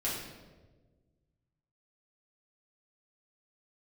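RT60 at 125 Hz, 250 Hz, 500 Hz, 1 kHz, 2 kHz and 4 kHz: 2.3, 1.8, 1.6, 1.1, 0.95, 0.85 seconds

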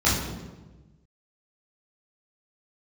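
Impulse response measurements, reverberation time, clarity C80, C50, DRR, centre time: 1.2 s, 5.5 dB, 2.5 dB, −9.0 dB, 59 ms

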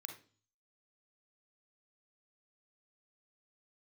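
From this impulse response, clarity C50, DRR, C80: 7.0 dB, 4.0 dB, 13.5 dB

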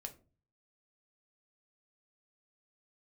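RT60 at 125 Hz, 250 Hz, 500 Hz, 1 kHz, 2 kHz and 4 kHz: 0.75, 0.50, 0.40, 0.30, 0.25, 0.20 seconds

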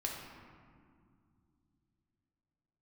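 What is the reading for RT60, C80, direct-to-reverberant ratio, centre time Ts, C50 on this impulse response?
2.2 s, 3.5 dB, −1.5 dB, 77 ms, 1.5 dB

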